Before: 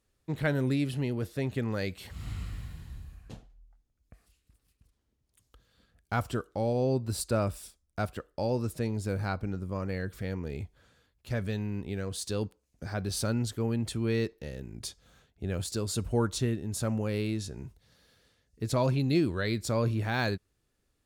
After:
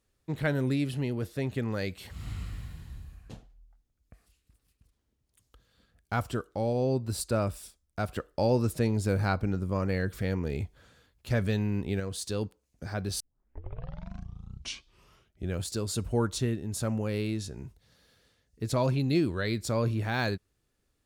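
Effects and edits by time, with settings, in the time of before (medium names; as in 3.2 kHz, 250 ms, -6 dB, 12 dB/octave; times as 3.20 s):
8.09–12.00 s: gain +4.5 dB
13.20 s: tape start 2.38 s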